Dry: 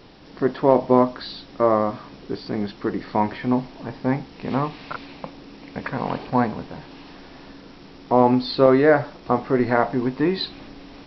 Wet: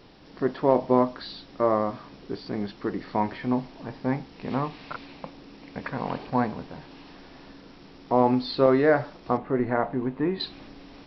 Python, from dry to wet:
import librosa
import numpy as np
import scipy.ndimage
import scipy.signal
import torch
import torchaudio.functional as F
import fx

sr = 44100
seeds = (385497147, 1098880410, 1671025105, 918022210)

y = fx.air_absorb(x, sr, metres=400.0, at=(9.37, 10.4))
y = y * librosa.db_to_amplitude(-4.5)